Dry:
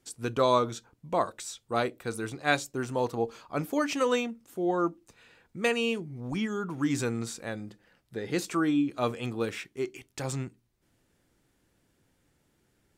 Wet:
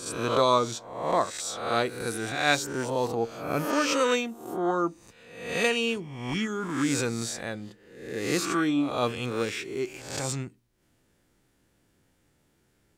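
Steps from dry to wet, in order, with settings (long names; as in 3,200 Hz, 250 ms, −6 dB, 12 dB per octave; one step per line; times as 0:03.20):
peak hold with a rise ahead of every peak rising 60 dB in 0.78 s
dynamic equaliser 5,000 Hz, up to +4 dB, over −43 dBFS, Q 0.72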